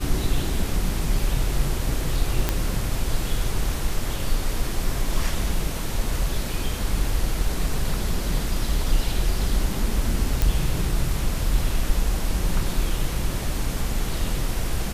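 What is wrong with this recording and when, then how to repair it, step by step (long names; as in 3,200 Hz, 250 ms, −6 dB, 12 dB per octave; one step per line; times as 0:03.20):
0:02.49: click −6 dBFS
0:10.42: click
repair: click removal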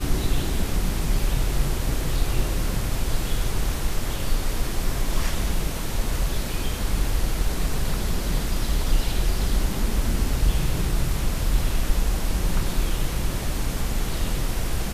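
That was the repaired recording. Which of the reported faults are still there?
none of them is left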